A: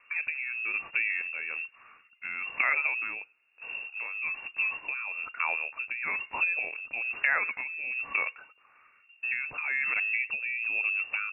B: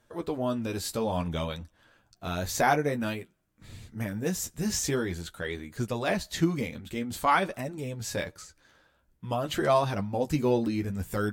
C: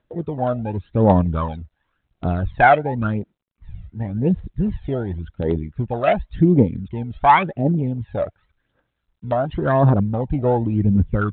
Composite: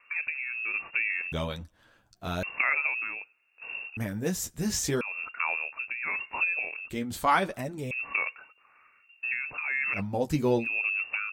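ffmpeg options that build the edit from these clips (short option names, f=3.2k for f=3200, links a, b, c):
-filter_complex "[1:a]asplit=4[a][b][c][d];[0:a]asplit=5[e][f][g][h][i];[e]atrim=end=1.322[j];[a]atrim=start=1.318:end=2.432[k];[f]atrim=start=2.428:end=3.972[l];[b]atrim=start=3.968:end=5.012[m];[g]atrim=start=5.008:end=6.902[n];[c]atrim=start=6.898:end=7.912[o];[h]atrim=start=7.908:end=10.02[p];[d]atrim=start=9.92:end=10.68[q];[i]atrim=start=10.58[r];[j][k]acrossfade=d=0.004:c1=hsin:c2=hsin[s];[s][l]acrossfade=d=0.004:c1=hsin:c2=hsin[t];[t][m]acrossfade=d=0.004:c1=hsin:c2=hsin[u];[u][n]acrossfade=d=0.004:c1=hsin:c2=hsin[v];[v][o]acrossfade=d=0.004:c1=hsin:c2=hsin[w];[w][p]acrossfade=d=0.004:c1=hsin:c2=hsin[x];[x][q]acrossfade=d=0.1:c1=tri:c2=tri[y];[y][r]acrossfade=d=0.1:c1=tri:c2=tri"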